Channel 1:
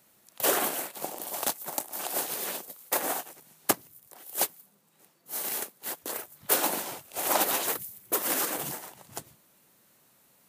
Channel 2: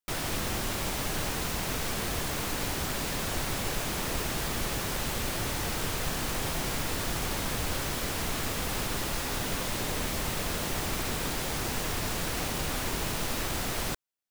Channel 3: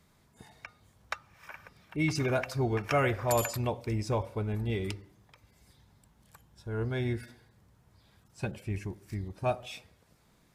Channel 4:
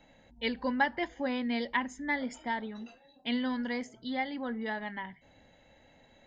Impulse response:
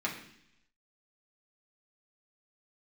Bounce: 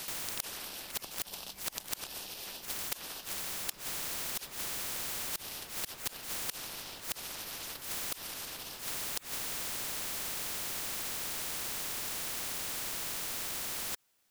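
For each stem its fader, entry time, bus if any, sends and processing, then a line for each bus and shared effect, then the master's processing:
+2.5 dB, 0.00 s, no send, limiter -19.5 dBFS, peak gain reduction 12 dB; band shelf 3800 Hz +13.5 dB 1.3 oct
3.55 s -12.5 dB -> 4.03 s -2.5 dB, 0.00 s, no send, dry
-17.5 dB, 1.90 s, no send, dry
-13.0 dB, 0.00 s, no send, robotiser 193 Hz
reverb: off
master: flipped gate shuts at -18 dBFS, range -34 dB; spectral compressor 10:1

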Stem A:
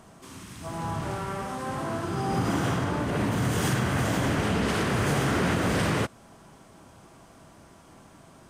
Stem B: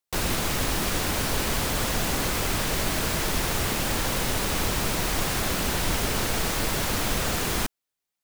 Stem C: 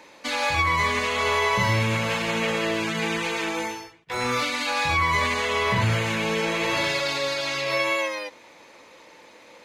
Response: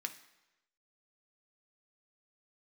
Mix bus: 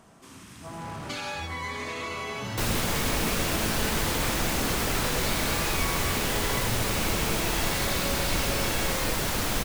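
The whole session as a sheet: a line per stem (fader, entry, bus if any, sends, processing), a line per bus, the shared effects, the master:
-5.5 dB, 0.00 s, bus A, send -6.5 dB, hard clip -29.5 dBFS, distortion -7 dB
-1.5 dB, 2.45 s, no bus, no send, dry
-1.0 dB, 0.85 s, bus A, no send, cascading phaser rising 0.82 Hz
bus A: 0.0 dB, compressor 5:1, threshold -32 dBFS, peak gain reduction 11 dB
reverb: on, RT60 1.0 s, pre-delay 3 ms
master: dry

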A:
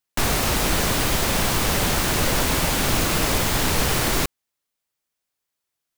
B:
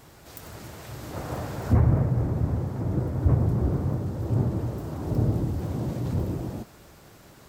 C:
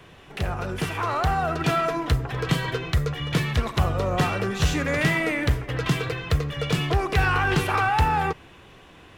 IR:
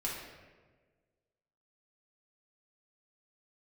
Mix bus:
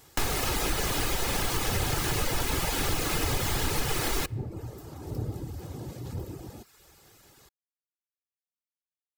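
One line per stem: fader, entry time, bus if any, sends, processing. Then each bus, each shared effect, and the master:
-3.0 dB, 0.00 s, send -16 dB, dry
-8.0 dB, 0.00 s, no send, high shelf 2400 Hz +9.5 dB
off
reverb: on, RT60 1.4 s, pre-delay 3 ms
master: reverb removal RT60 0.59 s; comb 2.4 ms, depth 33%; compressor 2.5:1, threshold -26 dBFS, peak gain reduction 7.5 dB

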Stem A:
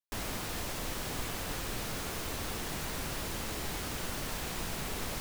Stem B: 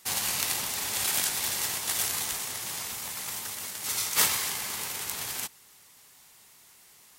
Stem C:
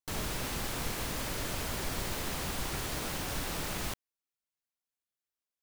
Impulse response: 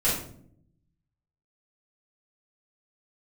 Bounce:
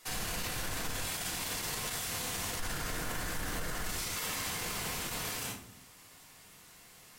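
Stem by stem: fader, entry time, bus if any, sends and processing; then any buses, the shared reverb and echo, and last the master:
-2.5 dB, 0.05 s, no send, ripple EQ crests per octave 1.9, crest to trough 11 dB; limiter -28.5 dBFS, peak gain reduction 6.5 dB
-5.5 dB, 0.00 s, send -4 dB, dry
+2.0 dB, 0.00 s, muted 1.03–2.59, send -5.5 dB, ladder low-pass 1900 Hz, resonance 60%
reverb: on, RT60 0.60 s, pre-delay 3 ms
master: high shelf 5200 Hz -6 dB; limiter -27 dBFS, peak gain reduction 17 dB

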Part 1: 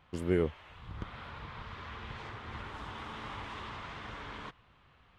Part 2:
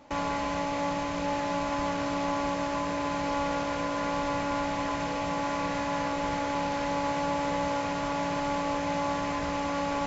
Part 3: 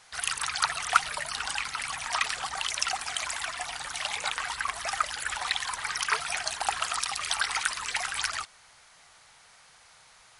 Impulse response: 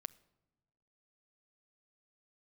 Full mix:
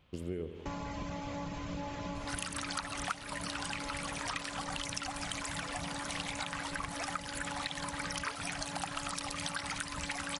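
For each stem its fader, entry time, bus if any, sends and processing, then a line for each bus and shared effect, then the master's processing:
-0.5 dB, 0.00 s, no send, echo send -12.5 dB, band shelf 1200 Hz -8 dB
-6.5 dB, 0.55 s, no send, no echo send, reverb removal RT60 1 s; tone controls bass +11 dB, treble +3 dB
-0.5 dB, 2.15 s, no send, no echo send, dry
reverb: off
echo: feedback echo 82 ms, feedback 53%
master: compressor 4:1, threshold -36 dBFS, peak gain reduction 17.5 dB

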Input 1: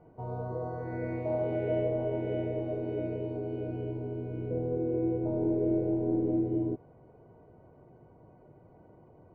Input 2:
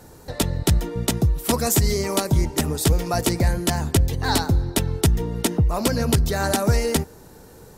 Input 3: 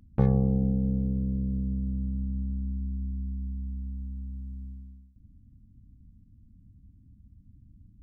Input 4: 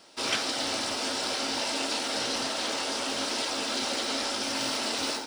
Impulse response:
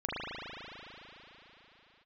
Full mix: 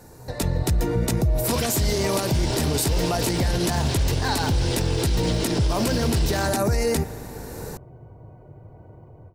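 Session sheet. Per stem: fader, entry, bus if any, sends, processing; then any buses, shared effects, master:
-15.0 dB, 0.00 s, bus A, no send, resonant low shelf 150 Hz +7.5 dB, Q 1.5; AGC gain up to 9 dB
-2.0 dB, 0.00 s, bus A, send -21.5 dB, bell 3200 Hz -8 dB 0.25 oct; notch 1300 Hz, Q 16
off
+1.0 dB, 1.30 s, no bus, no send, notch 1300 Hz, Q 8.9
bus A: 0.0 dB, AGC gain up to 13.5 dB; limiter -9.5 dBFS, peak gain reduction 8 dB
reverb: on, RT60 4.0 s, pre-delay 37 ms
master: limiter -14 dBFS, peak gain reduction 7 dB

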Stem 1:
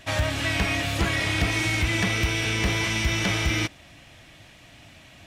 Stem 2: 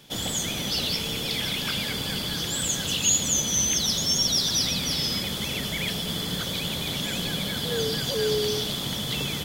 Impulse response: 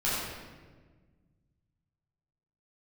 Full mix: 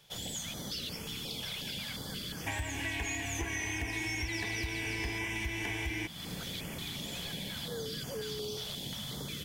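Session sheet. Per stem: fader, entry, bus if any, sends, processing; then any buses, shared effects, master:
+2.0 dB, 2.40 s, no send, fixed phaser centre 860 Hz, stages 8
-9.0 dB, 0.00 s, no send, stepped notch 5.6 Hz 270–3800 Hz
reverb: off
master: compressor 4:1, threshold -35 dBFS, peak gain reduction 14 dB

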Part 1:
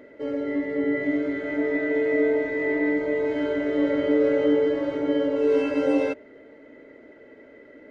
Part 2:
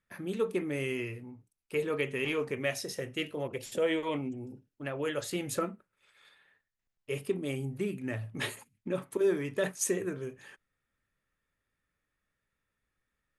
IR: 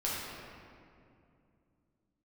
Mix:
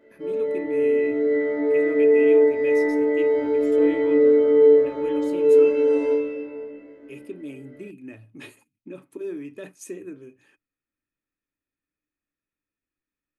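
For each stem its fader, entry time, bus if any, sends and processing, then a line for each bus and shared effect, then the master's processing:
+2.0 dB, 0.00 s, send -4 dB, resonator bank D2 fifth, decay 0.56 s
-11.0 dB, 0.00 s, no send, notches 60/120 Hz; small resonant body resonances 300/2500 Hz, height 15 dB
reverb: on, RT60 2.5 s, pre-delay 6 ms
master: dry

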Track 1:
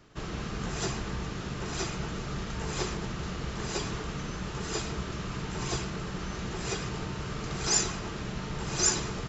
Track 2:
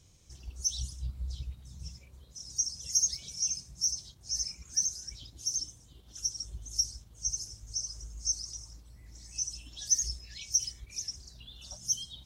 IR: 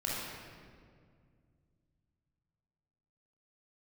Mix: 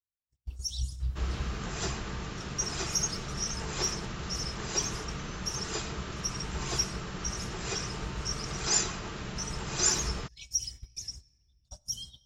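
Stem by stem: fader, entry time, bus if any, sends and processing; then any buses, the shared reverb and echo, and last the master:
-0.5 dB, 1.00 s, no send, low shelf 420 Hz -6.5 dB
-1.0 dB, 0.00 s, send -23.5 dB, gate -43 dBFS, range -50 dB; notch 6200 Hz, Q 11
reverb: on, RT60 2.1 s, pre-delay 21 ms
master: low shelf 150 Hz +5.5 dB

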